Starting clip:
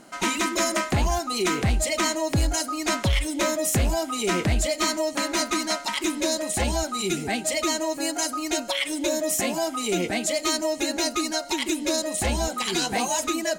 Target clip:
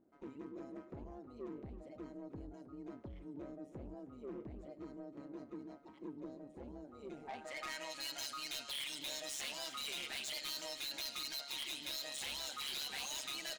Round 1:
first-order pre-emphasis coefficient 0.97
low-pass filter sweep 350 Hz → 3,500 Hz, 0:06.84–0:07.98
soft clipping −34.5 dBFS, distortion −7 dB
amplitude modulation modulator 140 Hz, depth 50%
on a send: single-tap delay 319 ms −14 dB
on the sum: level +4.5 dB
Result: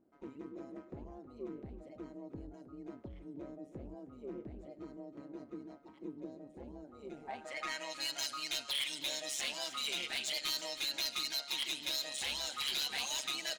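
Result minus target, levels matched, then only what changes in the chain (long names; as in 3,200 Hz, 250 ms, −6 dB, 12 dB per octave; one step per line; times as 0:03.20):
soft clipping: distortion −5 dB
change: soft clipping −42.5 dBFS, distortion −3 dB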